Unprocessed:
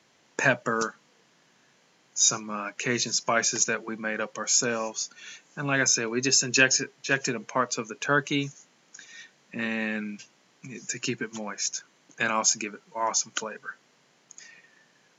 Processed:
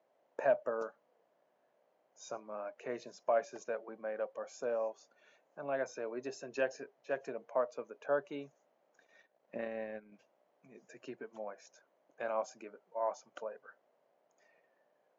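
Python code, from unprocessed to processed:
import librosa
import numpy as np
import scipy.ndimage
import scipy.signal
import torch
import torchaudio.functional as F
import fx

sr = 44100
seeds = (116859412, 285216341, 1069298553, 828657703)

y = fx.bandpass_q(x, sr, hz=610.0, q=3.9)
y = fx.transient(y, sr, attack_db=9, sustain_db=-10, at=(9.0, 10.12))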